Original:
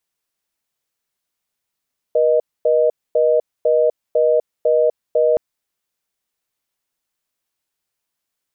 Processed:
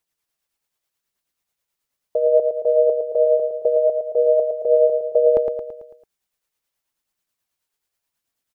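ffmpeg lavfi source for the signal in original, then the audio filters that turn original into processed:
-f lavfi -i "aevalsrc='0.188*(sin(2*PI*480*t)+sin(2*PI*620*t))*clip(min(mod(t,0.5),0.25-mod(t,0.5))/0.005,0,1)':duration=3.22:sample_rate=44100"
-filter_complex "[0:a]aphaser=in_gain=1:out_gain=1:delay=2.5:decay=0.28:speed=0.84:type=triangular,tremolo=f=9.3:d=0.44,asplit=2[link_01][link_02];[link_02]aecho=0:1:111|222|333|444|555|666:0.501|0.261|0.136|0.0705|0.0366|0.0191[link_03];[link_01][link_03]amix=inputs=2:normalize=0"

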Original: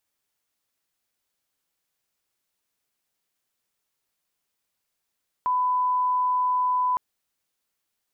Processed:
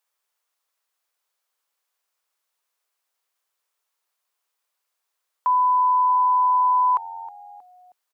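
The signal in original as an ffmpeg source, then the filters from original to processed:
-f lavfi -i "sine=frequency=1000:duration=1.51:sample_rate=44100,volume=-1.94dB"
-filter_complex "[0:a]highpass=frequency=430:width=0.5412,highpass=frequency=430:width=1.3066,equalizer=frequency=1100:width=1.8:gain=5.5,asplit=4[link_01][link_02][link_03][link_04];[link_02]adelay=316,afreqshift=-91,volume=-17.5dB[link_05];[link_03]adelay=632,afreqshift=-182,volume=-25.2dB[link_06];[link_04]adelay=948,afreqshift=-273,volume=-33dB[link_07];[link_01][link_05][link_06][link_07]amix=inputs=4:normalize=0"

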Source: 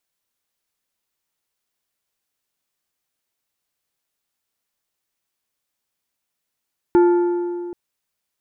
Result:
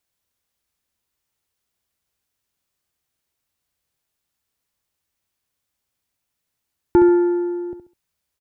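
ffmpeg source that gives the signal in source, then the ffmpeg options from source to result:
-f lavfi -i "aevalsrc='0.355*pow(10,-3*t/2.41)*sin(2*PI*350*t)+0.106*pow(10,-3*t/1.831)*sin(2*PI*875*t)+0.0316*pow(10,-3*t/1.59)*sin(2*PI*1400*t)+0.00944*pow(10,-3*t/1.487)*sin(2*PI*1750*t)+0.00282*pow(10,-3*t/1.374)*sin(2*PI*2275*t)':duration=0.78:sample_rate=44100"
-filter_complex "[0:a]equalizer=frequency=68:width=0.6:gain=10.5,asplit=2[link_01][link_02];[link_02]aecho=0:1:68|136|204:0.355|0.0958|0.0259[link_03];[link_01][link_03]amix=inputs=2:normalize=0"

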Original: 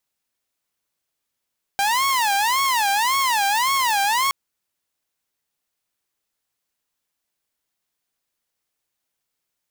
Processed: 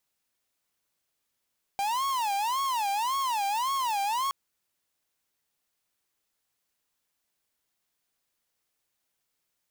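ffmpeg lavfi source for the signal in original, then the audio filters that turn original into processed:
-f lavfi -i "aevalsrc='0.178*(2*mod((945.5*t-154.5/(2*PI*1.8)*sin(2*PI*1.8*t)),1)-1)':duration=2.52:sample_rate=44100"
-af "asoftclip=type=hard:threshold=-27.5dB"

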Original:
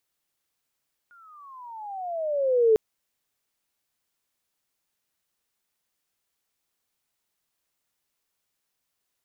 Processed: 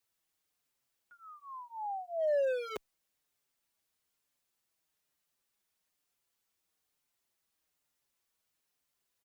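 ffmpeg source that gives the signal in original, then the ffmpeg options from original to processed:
-f lavfi -i "aevalsrc='pow(10,(-14+36.5*(t/1.65-1))/20)*sin(2*PI*1440*1.65/(-21*log(2)/12)*(exp(-21*log(2)/12*t/1.65)-1))':duration=1.65:sample_rate=44100"
-filter_complex "[0:a]acrossover=split=640[link_01][link_02];[link_01]volume=33dB,asoftclip=hard,volume=-33dB[link_03];[link_03][link_02]amix=inputs=2:normalize=0,asplit=2[link_04][link_05];[link_05]adelay=5.5,afreqshift=-1.1[link_06];[link_04][link_06]amix=inputs=2:normalize=1"

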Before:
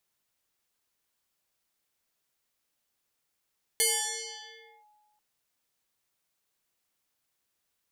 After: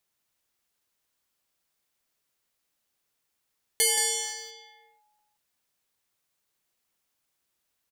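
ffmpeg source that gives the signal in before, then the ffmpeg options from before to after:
-f lavfi -i "aevalsrc='0.0944*pow(10,-3*t/1.64)*sin(2*PI*842*t+9*clip(1-t/1.05,0,1)*sin(2*PI*1.54*842*t))':duration=1.39:sample_rate=44100"
-filter_complex "[0:a]asplit=2[link_01][link_02];[link_02]aeval=exprs='val(0)*gte(abs(val(0)),0.01)':channel_layout=same,volume=-8dB[link_03];[link_01][link_03]amix=inputs=2:normalize=0,aecho=1:1:175:0.501"

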